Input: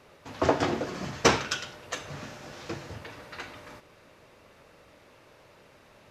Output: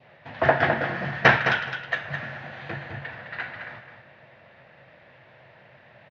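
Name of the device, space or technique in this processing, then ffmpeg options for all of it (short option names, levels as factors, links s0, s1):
guitar cabinet: -filter_complex "[0:a]asettb=1/sr,asplit=3[s0][s1][s2];[s0]atrim=end=2.424[s3];[s1]atrim=start=2.42:end=3.02,asetpts=PTS-STARTPTS,afade=t=in:d=0.004:c=qsin,afade=t=out:st=0.596:d=0.004:c=qsin,bandreject=f=5300:w=6.5[s4];[s2]atrim=start=3.016[s5];[s3][s4]acrossfade=d=0.004:c1=hsin:c2=qsin[s6];[s6][s5]acrossfade=d=0.004:c1=qsin:c2=hsin,highpass=100,equalizer=f=130:t=q:w=4:g=9,equalizer=f=290:t=q:w=4:g=-8,equalizer=f=420:t=q:w=4:g=-8,equalizer=f=690:t=q:w=4:g=6,equalizer=f=1200:t=q:w=4:g=-6,equalizer=f=1800:t=q:w=4:g=9,lowpass=f=3500:w=0.5412,lowpass=f=3500:w=1.3066,adynamicequalizer=threshold=0.00562:dfrequency=1500:dqfactor=1.8:tfrequency=1500:tqfactor=1.8:attack=5:release=100:ratio=0.375:range=3.5:mode=boostabove:tftype=bell,aecho=1:1:211|422|633:0.422|0.0717|0.0122,volume=1.26"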